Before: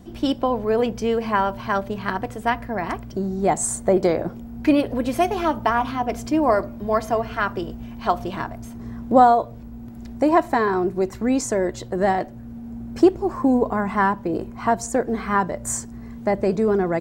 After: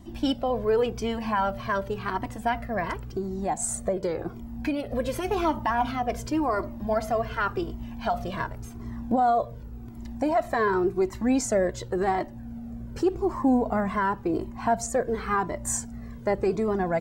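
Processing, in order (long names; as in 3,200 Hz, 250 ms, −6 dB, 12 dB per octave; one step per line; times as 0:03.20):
0:02.89–0:04.92: downward compressor 3 to 1, threshold −23 dBFS, peak gain reduction 8.5 dB
brickwall limiter −13 dBFS, peak gain reduction 11 dB
flanger whose copies keep moving one way falling 0.9 Hz
level +2 dB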